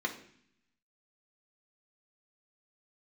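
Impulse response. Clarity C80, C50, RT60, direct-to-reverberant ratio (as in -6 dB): 14.5 dB, 11.0 dB, 0.60 s, 0.0 dB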